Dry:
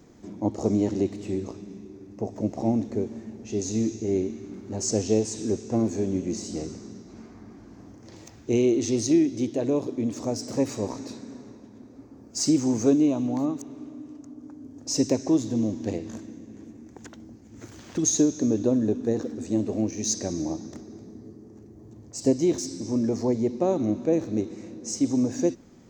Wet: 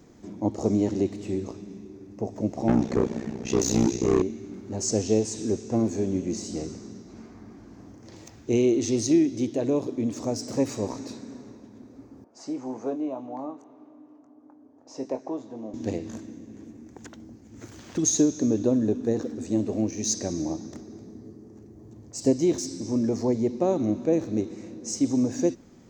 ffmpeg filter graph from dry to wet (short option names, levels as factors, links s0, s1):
-filter_complex "[0:a]asettb=1/sr,asplit=3[s0][s1][s2];[s0]atrim=end=2.684[s3];[s1]atrim=start=2.68:end=4.22,asetpts=PTS-STARTPTS,afade=t=in:d=0.004:c=qsin,afade=t=out:st=1.536:d=0.004:c=qsin,lowshelf=f=160:g=11.5,asplit=2[s4][s5];[s5]highpass=f=720:p=1,volume=12.6,asoftclip=type=tanh:threshold=0.355[s6];[s4][s6]amix=inputs=2:normalize=0,lowpass=f=4700:p=1,volume=0.501,tremolo=f=62:d=0.889[s7];[s2]atrim=start=4.216[s8];[s3][s7]acrossfade=d=0.004:c1=hsin:c2=qsin[s9];[s9][s8]acrossfade=d=0.004:c1=qsin:c2=hsin,asettb=1/sr,asplit=3[s10][s11][s12];[s10]atrim=end=12.244[s13];[s11]atrim=start=12.24:end=15.74,asetpts=PTS-STARTPTS,afade=t=in:d=0.004:c=qsin,afade=t=out:st=3.496:d=0.004:c=qsin,bandpass=f=820:t=q:w=1.5,asplit=2[s14][s15];[s15]adelay=23,volume=0.355[s16];[s14][s16]amix=inputs=2:normalize=0,atrim=end_sample=154350[s17];[s12]atrim=start=15.736[s18];[s13][s17]acrossfade=d=0.004:c1=hsin:c2=qsin[s19];[s19][s18]acrossfade=d=0.004:c1=qsin:c2=hsin"